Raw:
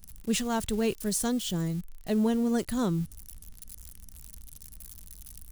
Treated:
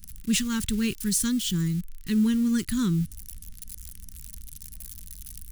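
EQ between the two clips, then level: Butterworth band-stop 650 Hz, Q 0.54; +5.0 dB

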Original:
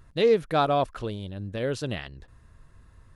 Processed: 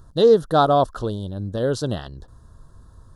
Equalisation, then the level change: dynamic EQ 2400 Hz, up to +5 dB, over -45 dBFS, Q 1.4; Butterworth band-stop 2300 Hz, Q 1; +6.5 dB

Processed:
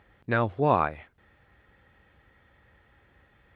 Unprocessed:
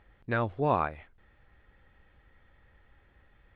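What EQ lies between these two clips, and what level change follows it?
HPF 73 Hz 12 dB/oct; +4.0 dB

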